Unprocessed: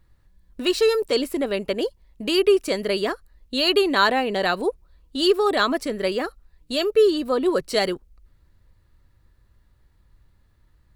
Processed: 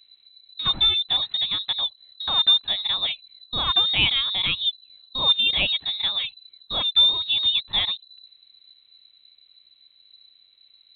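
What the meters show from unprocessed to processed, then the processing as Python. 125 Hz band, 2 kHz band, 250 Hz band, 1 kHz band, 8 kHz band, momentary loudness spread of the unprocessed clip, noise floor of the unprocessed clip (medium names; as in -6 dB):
no reading, -3.0 dB, -19.0 dB, -8.0 dB, under -40 dB, 10 LU, -60 dBFS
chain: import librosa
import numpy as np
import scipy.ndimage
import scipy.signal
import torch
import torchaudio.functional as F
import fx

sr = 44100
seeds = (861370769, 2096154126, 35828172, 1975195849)

y = fx.freq_invert(x, sr, carrier_hz=4000)
y = fx.dynamic_eq(y, sr, hz=1500.0, q=1.3, threshold_db=-39.0, ratio=4.0, max_db=-8)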